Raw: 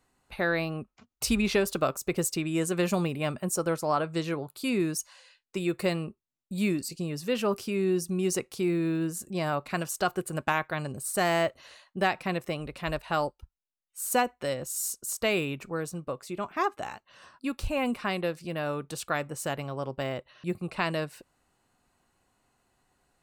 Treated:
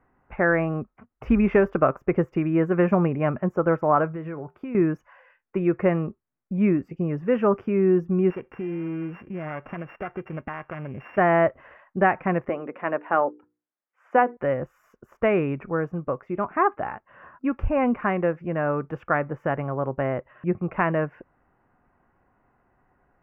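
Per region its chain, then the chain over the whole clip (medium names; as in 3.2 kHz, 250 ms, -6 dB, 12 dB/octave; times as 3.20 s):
4.12–4.75 s: feedback comb 80 Hz, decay 0.25 s, mix 30% + compression, threshold -36 dBFS
8.30–11.18 s: sorted samples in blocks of 16 samples + band-stop 6.2 kHz, Q 14 + compression 2.5:1, threshold -38 dBFS
12.49–14.37 s: high-pass 230 Hz 24 dB/octave + distance through air 73 m + hum notches 60/120/180/240/300/360/420/480 Hz
whole clip: de-esser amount 50%; inverse Chebyshev low-pass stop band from 3.8 kHz, stop band 40 dB; trim +7 dB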